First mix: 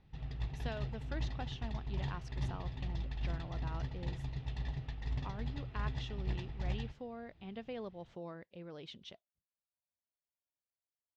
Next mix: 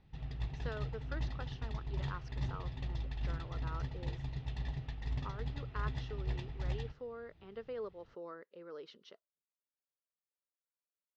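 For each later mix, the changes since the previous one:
speech: add speaker cabinet 370–5500 Hz, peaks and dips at 440 Hz +8 dB, 730 Hz -10 dB, 1300 Hz +8 dB, 2400 Hz -9 dB, 3500 Hz -10 dB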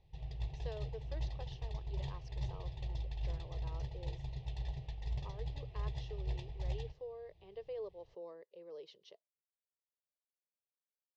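master: add fixed phaser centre 580 Hz, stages 4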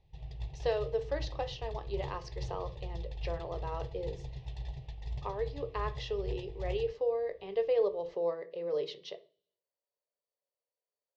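speech +12.0 dB; reverb: on

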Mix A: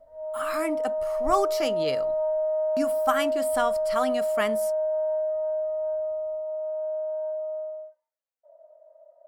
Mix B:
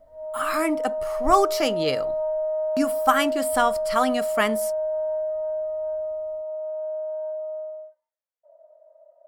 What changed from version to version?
speech +5.5 dB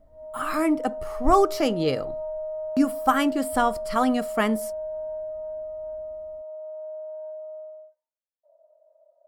background -7.0 dB; master: add tilt shelf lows +5 dB, about 710 Hz

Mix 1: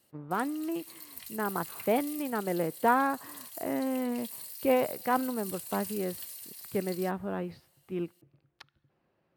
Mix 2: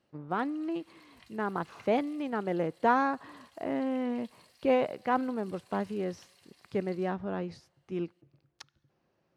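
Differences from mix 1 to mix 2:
speech: remove air absorption 420 m; master: add tape spacing loss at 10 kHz 25 dB

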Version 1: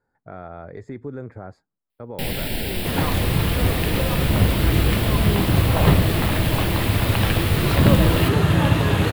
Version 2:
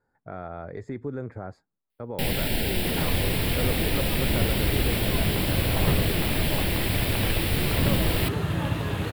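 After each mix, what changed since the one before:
second sound -9.5 dB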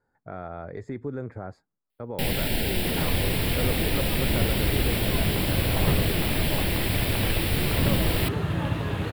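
second sound: add high shelf 5300 Hz -7 dB

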